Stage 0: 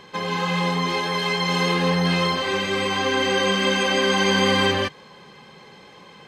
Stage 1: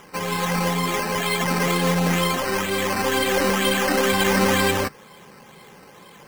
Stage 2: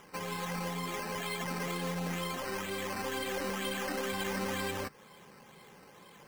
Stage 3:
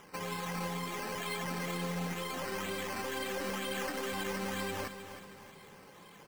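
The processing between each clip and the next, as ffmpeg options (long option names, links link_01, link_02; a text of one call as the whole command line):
ffmpeg -i in.wav -af "acrusher=samples=10:mix=1:aa=0.000001:lfo=1:lforange=6:lforate=2.1,aeval=exprs='0.422*(cos(1*acos(clip(val(0)/0.422,-1,1)))-cos(1*PI/2))+0.0106*(cos(8*acos(clip(val(0)/0.422,-1,1)))-cos(8*PI/2))':channel_layout=same" out.wav
ffmpeg -i in.wav -af "acompressor=threshold=-28dB:ratio=2,volume=-9dB" out.wav
ffmpeg -i in.wav -af "alimiter=level_in=5dB:limit=-24dB:level=0:latency=1:release=64,volume=-5dB,aecho=1:1:314|628|942|1256|1570:0.299|0.131|0.0578|0.0254|0.0112" out.wav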